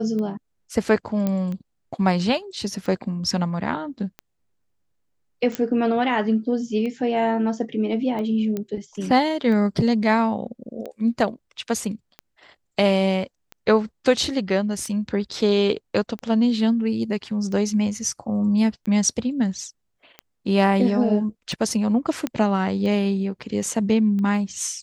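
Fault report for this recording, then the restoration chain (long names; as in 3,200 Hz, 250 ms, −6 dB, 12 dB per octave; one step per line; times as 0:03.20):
scratch tick 45 rpm −21 dBFS
0:01.27: click −12 dBFS
0:05.55: click −10 dBFS
0:08.57: click −15 dBFS
0:22.27: click −11 dBFS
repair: click removal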